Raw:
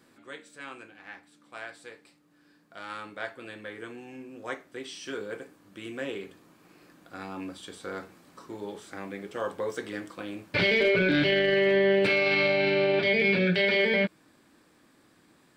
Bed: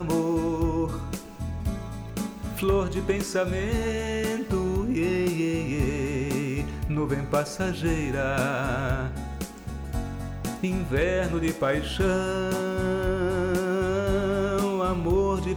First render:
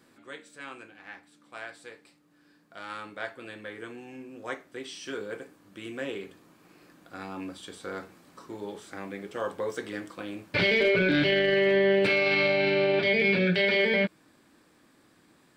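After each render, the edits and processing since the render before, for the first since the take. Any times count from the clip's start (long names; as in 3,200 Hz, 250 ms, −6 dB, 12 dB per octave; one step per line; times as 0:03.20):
no processing that can be heard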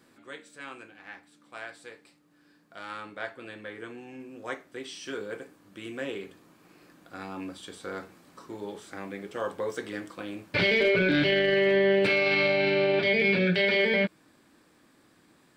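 0:02.90–0:04.20: high-shelf EQ 6,400 Hz −5 dB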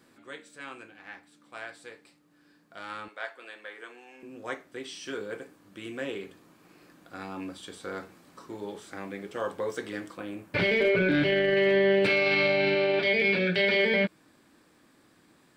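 0:03.08–0:04.23: high-pass filter 590 Hz
0:10.17–0:11.57: parametric band 4,400 Hz −6.5 dB 1.4 octaves
0:12.75–0:13.56: low-shelf EQ 140 Hz −11.5 dB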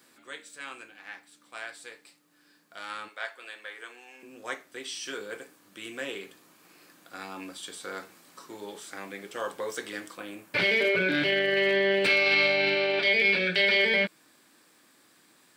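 high-pass filter 98 Hz
spectral tilt +2.5 dB per octave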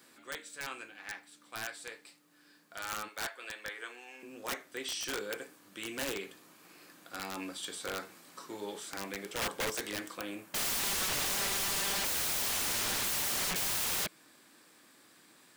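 wrap-around overflow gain 28 dB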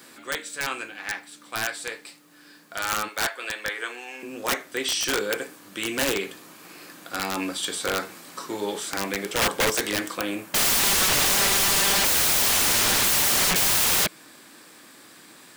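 level +12 dB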